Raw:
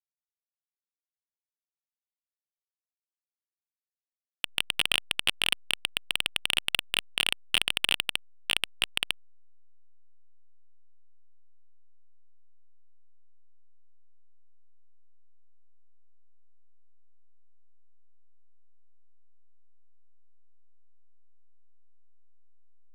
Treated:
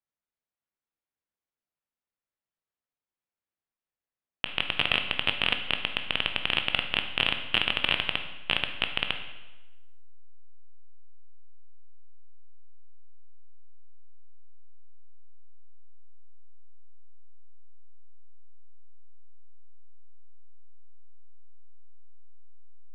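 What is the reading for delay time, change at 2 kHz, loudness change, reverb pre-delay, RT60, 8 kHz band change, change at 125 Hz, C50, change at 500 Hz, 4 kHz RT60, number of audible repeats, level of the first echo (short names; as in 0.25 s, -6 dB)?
none, +2.0 dB, +0.5 dB, 15 ms, 1.1 s, under -20 dB, +7.5 dB, 8.5 dB, +6.5 dB, 0.95 s, none, none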